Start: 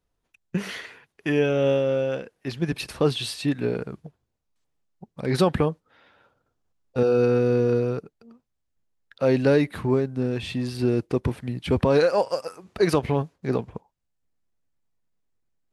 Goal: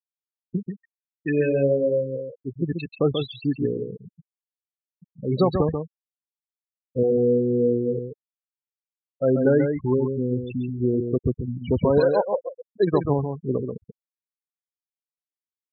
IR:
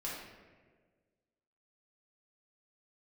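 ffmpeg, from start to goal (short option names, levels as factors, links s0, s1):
-af "adynamicequalizer=threshold=0.00891:dfrequency=1200:dqfactor=3.6:tfrequency=1200:tqfactor=3.6:attack=5:release=100:ratio=0.375:range=1.5:mode=cutabove:tftype=bell,afftfilt=real='re*gte(hypot(re,im),0.126)':imag='im*gte(hypot(re,im),0.126)':win_size=1024:overlap=0.75,aecho=1:1:136:0.501"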